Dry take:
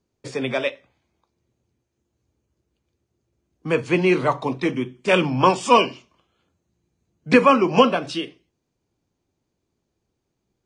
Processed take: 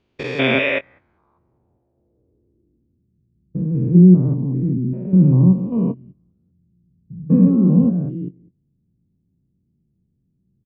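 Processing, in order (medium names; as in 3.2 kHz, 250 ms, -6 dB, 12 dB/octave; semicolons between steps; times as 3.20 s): spectrogram pixelated in time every 200 ms; low-pass sweep 3 kHz -> 180 Hz, 0.45–3.20 s; doubling 22 ms -13 dB; trim +9 dB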